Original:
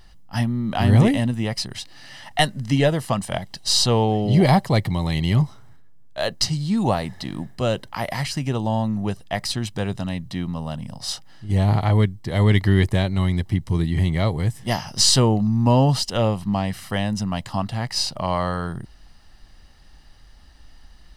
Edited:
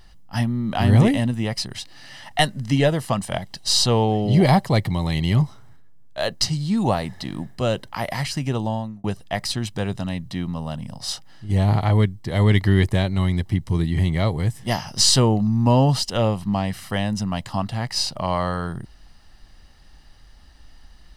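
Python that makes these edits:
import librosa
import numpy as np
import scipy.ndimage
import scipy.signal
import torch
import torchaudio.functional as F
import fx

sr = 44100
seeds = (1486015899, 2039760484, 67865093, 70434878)

y = fx.edit(x, sr, fx.fade_out_span(start_s=8.61, length_s=0.43), tone=tone)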